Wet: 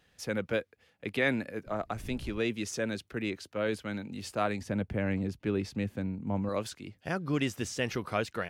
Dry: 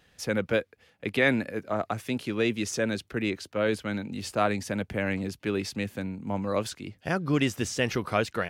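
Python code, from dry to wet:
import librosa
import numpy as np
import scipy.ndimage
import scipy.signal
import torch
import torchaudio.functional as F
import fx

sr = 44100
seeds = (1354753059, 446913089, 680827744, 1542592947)

y = fx.dmg_wind(x, sr, seeds[0], corner_hz=110.0, level_db=-40.0, at=(1.65, 2.38), fade=0.02)
y = fx.tilt_eq(y, sr, slope=-2.0, at=(4.61, 6.49))
y = y * 10.0 ** (-5.0 / 20.0)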